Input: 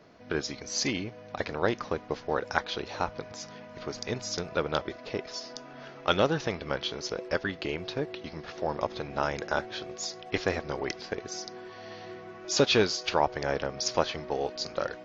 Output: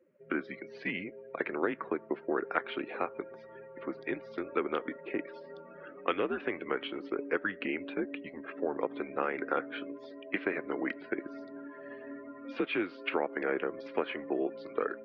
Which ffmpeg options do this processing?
ffmpeg -i in.wav -af "afftdn=noise_reduction=23:noise_floor=-45,equalizer=frequency=890:width=1.1:gain=-11,acompressor=threshold=-29dB:ratio=12,highpass=frequency=390:width_type=q:width=0.5412,highpass=frequency=390:width_type=q:width=1.307,lowpass=frequency=2600:width_type=q:width=0.5176,lowpass=frequency=2600:width_type=q:width=0.7071,lowpass=frequency=2600:width_type=q:width=1.932,afreqshift=-88,volume=6dB" out.wav

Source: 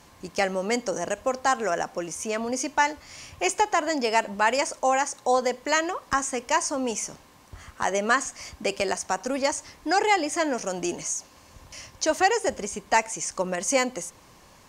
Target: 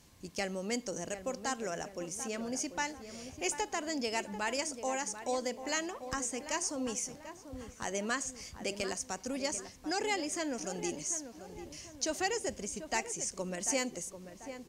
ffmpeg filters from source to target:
ffmpeg -i in.wav -filter_complex "[0:a]equalizer=frequency=1000:width=0.55:gain=-10.5,asplit=2[link_01][link_02];[link_02]adelay=741,lowpass=frequency=1600:poles=1,volume=-10dB,asplit=2[link_03][link_04];[link_04]adelay=741,lowpass=frequency=1600:poles=1,volume=0.48,asplit=2[link_05][link_06];[link_06]adelay=741,lowpass=frequency=1600:poles=1,volume=0.48,asplit=2[link_07][link_08];[link_08]adelay=741,lowpass=frequency=1600:poles=1,volume=0.48,asplit=2[link_09][link_10];[link_10]adelay=741,lowpass=frequency=1600:poles=1,volume=0.48[link_11];[link_03][link_05][link_07][link_09][link_11]amix=inputs=5:normalize=0[link_12];[link_01][link_12]amix=inputs=2:normalize=0,volume=-5dB" out.wav

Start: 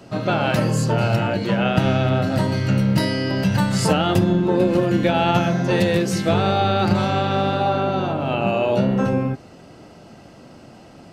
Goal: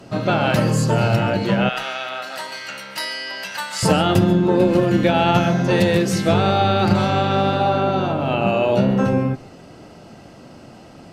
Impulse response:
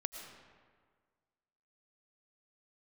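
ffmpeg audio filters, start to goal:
-filter_complex "[0:a]asettb=1/sr,asplit=3[link_01][link_02][link_03];[link_01]atrim=end=1.694[link_04];[link_02]atrim=start=1.69:end=3.83,asetpts=PTS-STARTPTS,afade=type=in:duration=0.004:curve=qsin,afade=type=out:start_time=2.136:duration=0.004:curve=qsin,highpass=1100[link_05];[link_03]atrim=start=3.826[link_06];[link_04][link_05]acrossfade=duration=0.004:curve1=hsin:curve2=qsin[link_07];[link_07][link_06]acrossfade=duration=0.004:curve1=qsin:curve2=hsin[link_08];[1:a]atrim=start_sample=2205,atrim=end_sample=4410,asetrate=29547,aresample=44100[link_09];[link_08][link_09]afir=irnorm=-1:irlink=0,volume=1.5dB"

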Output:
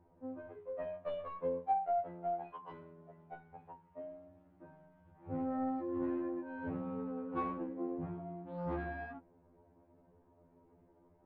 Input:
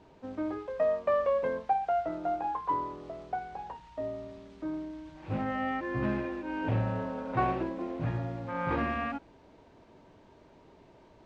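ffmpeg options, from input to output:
ffmpeg -i in.wav -af "adynamicsmooth=sensitivity=1:basefreq=1100,lowpass=2900,afftfilt=real='re*2*eq(mod(b,4),0)':imag='im*2*eq(mod(b,4),0)':win_size=2048:overlap=0.75,volume=-5dB" out.wav

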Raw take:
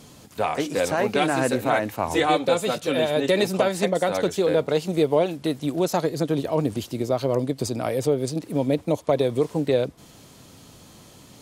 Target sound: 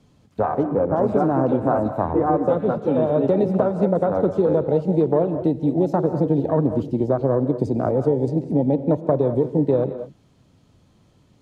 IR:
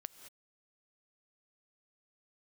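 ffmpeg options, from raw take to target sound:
-filter_complex "[0:a]aemphasis=mode=reproduction:type=50fm,afwtdn=0.0631,lowshelf=frequency=200:gain=9.5,acrossover=split=160|1600[link_01][link_02][link_03];[link_01]acompressor=threshold=-35dB:ratio=4[link_04];[link_02]acompressor=threshold=-19dB:ratio=4[link_05];[link_03]acompressor=threshold=-53dB:ratio=4[link_06];[link_04][link_05][link_06]amix=inputs=3:normalize=0,asettb=1/sr,asplit=3[link_07][link_08][link_09];[link_07]atrim=end=0.634[link_10];[link_08]atrim=start=0.63:end=2.69,asetpts=PTS-STARTPTS,afade=type=in:duration=0.004:curve=qsin,afade=type=out:start_time=2.056:duration=0.004:curve=qsin,acrossover=split=2200[link_11][link_12];[link_12]adelay=330[link_13];[link_11][link_13]amix=inputs=2:normalize=0,atrim=end_sample=90846[link_14];[link_09]atrim=start=2.686[link_15];[link_10][link_14]acrossfade=duration=0.004:curve1=hsin:curve2=qsin[link_16];[link_16][link_15]acrossfade=duration=0.004:curve1=qsin:curve2=hsin[link_17];[1:a]atrim=start_sample=2205[link_18];[link_17][link_18]afir=irnorm=-1:irlink=0,volume=8.5dB"

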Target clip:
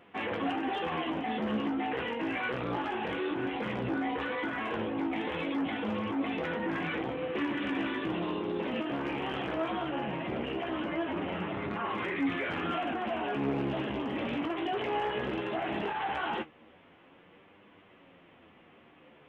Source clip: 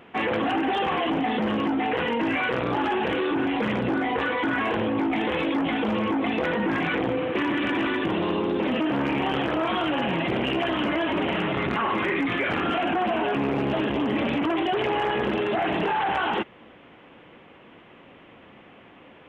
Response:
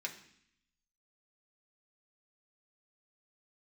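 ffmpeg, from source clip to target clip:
-filter_complex "[0:a]flanger=delay=5.7:depth=5.3:regen=79:speed=1.1:shape=sinusoidal,asettb=1/sr,asplit=3[link_01][link_02][link_03];[link_01]atrim=end=9.704[link_04];[link_02]atrim=start=9.7:end=11.85,asetpts=PTS-STARTPTS,afade=type=in:duration=0.004:curve=qsin,afade=type=out:start_time=2.146:duration=0.004:curve=qsin,highshelf=frequency=3000:gain=-9.5[link_05];[link_03]atrim=start=11.846[link_06];[link_04][link_05]acrossfade=duration=0.004:curve1=hsin:curve2=qsin[link_07];[link_07][link_06]acrossfade=duration=0.004:curve1=qsin:curve2=hsin,flanger=delay=9.8:depth=7.7:regen=42:speed=0.17:shape=triangular"

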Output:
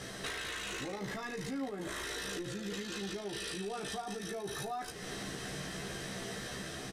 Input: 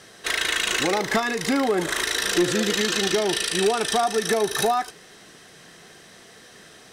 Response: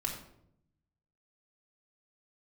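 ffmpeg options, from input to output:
-filter_complex "[0:a]lowshelf=frequency=290:gain=10,dynaudnorm=framelen=490:gausssize=5:maxgain=6.5dB,alimiter=limit=-20dB:level=0:latency=1:release=11,acompressor=threshold=-39dB:ratio=10,asplit=2[link_01][link_02];[link_02]adelay=15,volume=-3dB[link_03];[link_01][link_03]amix=inputs=2:normalize=0,asplit=2[link_04][link_05];[1:a]atrim=start_sample=2205,asetrate=74970,aresample=44100[link_06];[link_05][link_06]afir=irnorm=-1:irlink=0,volume=-11.5dB[link_07];[link_04][link_07]amix=inputs=2:normalize=0,aresample=32000,aresample=44100,volume=-1dB"

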